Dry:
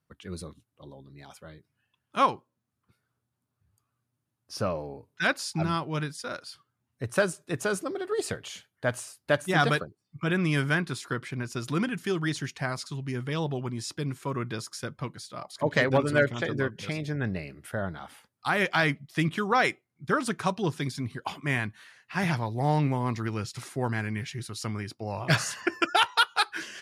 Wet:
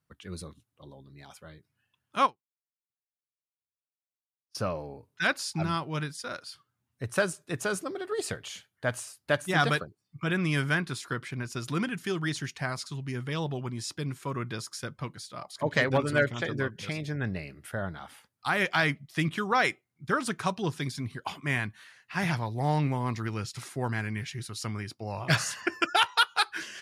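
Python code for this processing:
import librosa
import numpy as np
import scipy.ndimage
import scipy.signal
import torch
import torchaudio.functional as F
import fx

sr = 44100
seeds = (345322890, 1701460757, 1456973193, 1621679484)

y = fx.upward_expand(x, sr, threshold_db=-47.0, expansion=2.5, at=(2.25, 4.55))
y = fx.peak_eq(y, sr, hz=370.0, db=-3.0, octaves=2.7)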